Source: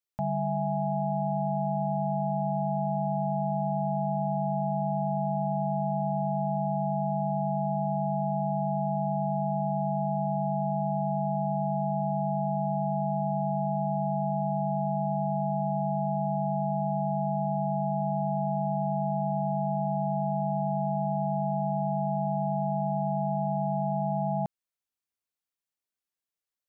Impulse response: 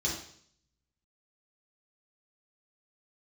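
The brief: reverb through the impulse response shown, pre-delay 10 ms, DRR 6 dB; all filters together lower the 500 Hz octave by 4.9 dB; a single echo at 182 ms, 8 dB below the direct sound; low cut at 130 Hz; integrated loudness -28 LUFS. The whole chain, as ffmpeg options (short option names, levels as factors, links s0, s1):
-filter_complex "[0:a]highpass=130,equalizer=f=500:t=o:g=-8,aecho=1:1:182:0.398,asplit=2[s0][s1];[1:a]atrim=start_sample=2205,adelay=10[s2];[s1][s2]afir=irnorm=-1:irlink=0,volume=0.266[s3];[s0][s3]amix=inputs=2:normalize=0"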